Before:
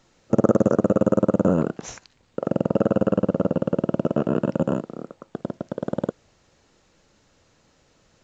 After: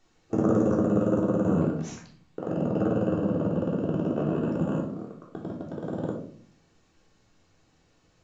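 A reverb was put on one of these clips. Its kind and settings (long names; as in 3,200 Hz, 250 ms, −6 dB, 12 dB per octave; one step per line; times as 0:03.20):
rectangular room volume 570 cubic metres, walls furnished, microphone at 3.5 metres
level −10 dB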